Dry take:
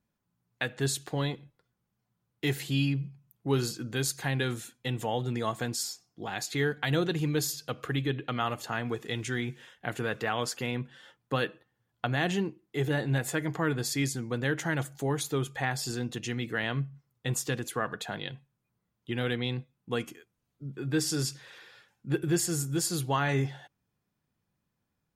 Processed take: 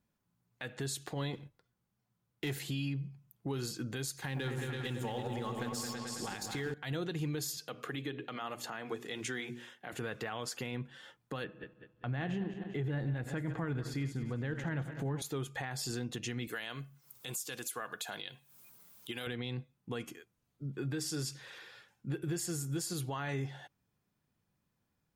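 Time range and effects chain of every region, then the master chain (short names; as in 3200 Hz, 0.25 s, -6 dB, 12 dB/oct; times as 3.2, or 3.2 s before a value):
1.33–2.59 sample leveller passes 1 + de-hum 46.2 Hz, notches 2
4.18–6.74 G.711 law mismatch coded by A + notch 670 Hz, Q 7.5 + repeats that get brighter 0.109 s, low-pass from 750 Hz, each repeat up 2 oct, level -3 dB
7.57–9.93 HPF 190 Hz + notches 60/120/180/240/300/360/420 Hz
11.44–15.22 regenerating reverse delay 0.1 s, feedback 60%, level -11.5 dB + tone controls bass +7 dB, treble -14 dB
16.47–19.27 upward compressor, threshold -48 dBFS + RIAA curve recording + notch 1900 Hz, Q 13
whole clip: compressor 3:1, threshold -34 dBFS; limiter -28 dBFS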